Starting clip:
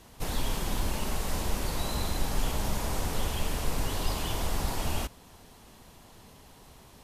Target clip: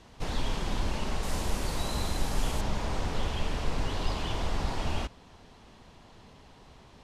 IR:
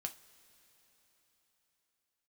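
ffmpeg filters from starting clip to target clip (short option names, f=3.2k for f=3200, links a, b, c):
-af "asetnsamples=n=441:p=0,asendcmd='1.23 lowpass f 10000;2.61 lowpass f 4800',lowpass=5.5k"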